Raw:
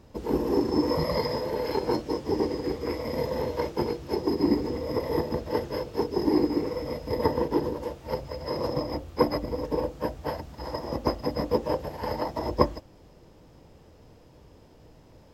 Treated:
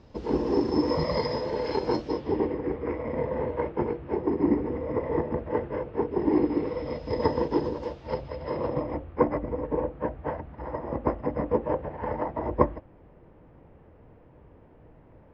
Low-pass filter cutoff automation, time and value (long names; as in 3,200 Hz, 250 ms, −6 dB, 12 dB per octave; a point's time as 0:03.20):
low-pass filter 24 dB per octave
0:02.03 5,600 Hz
0:02.59 2,300 Hz
0:06.00 2,300 Hz
0:07.20 5,400 Hz
0:07.87 5,400 Hz
0:09.16 2,200 Hz